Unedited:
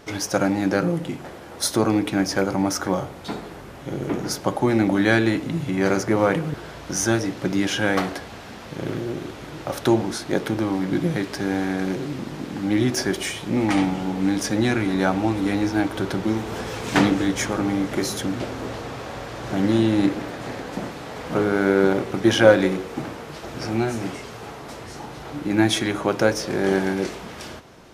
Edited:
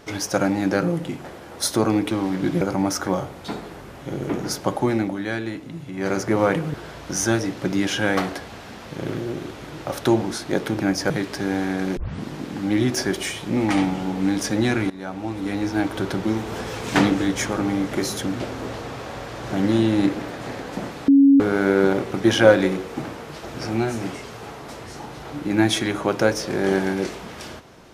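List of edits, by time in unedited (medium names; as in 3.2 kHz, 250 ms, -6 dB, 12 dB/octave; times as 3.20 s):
2.11–2.41 s: swap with 10.60–11.10 s
4.48–6.21 s: dip -9 dB, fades 0.48 s equal-power
11.97 s: tape start 0.27 s
14.90–15.89 s: fade in, from -18.5 dB
21.08–21.40 s: bleep 277 Hz -9 dBFS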